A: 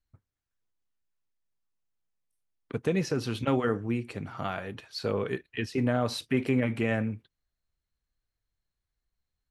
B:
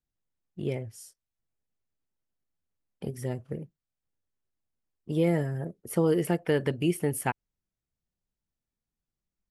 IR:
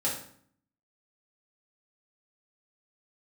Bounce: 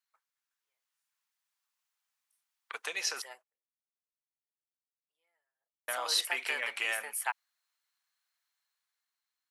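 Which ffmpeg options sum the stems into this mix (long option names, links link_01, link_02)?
-filter_complex "[0:a]acrossover=split=440|3000[link_01][link_02][link_03];[link_02]acompressor=threshold=-43dB:ratio=3[link_04];[link_01][link_04][link_03]amix=inputs=3:normalize=0,volume=2.5dB,asplit=3[link_05][link_06][link_07];[link_05]atrim=end=3.22,asetpts=PTS-STARTPTS,afade=type=out:start_time=3.216:duration=0.004:curve=hsin[link_08];[link_06]atrim=start=3.22:end=5.88,asetpts=PTS-STARTPTS,volume=0[link_09];[link_07]atrim=start=5.88,asetpts=PTS-STARTPTS,afade=type=in:duration=0.004:curve=hsin[link_10];[link_08][link_09][link_10]concat=n=3:v=0:a=1,asplit=2[link_11][link_12];[1:a]volume=-6.5dB[link_13];[link_12]apad=whole_len=419356[link_14];[link_13][link_14]sidechaingate=range=-41dB:threshold=-56dB:ratio=16:detection=peak[link_15];[link_11][link_15]amix=inputs=2:normalize=0,highpass=frequency=890:width=0.5412,highpass=frequency=890:width=1.3066,dynaudnorm=framelen=200:gausssize=9:maxgain=6dB"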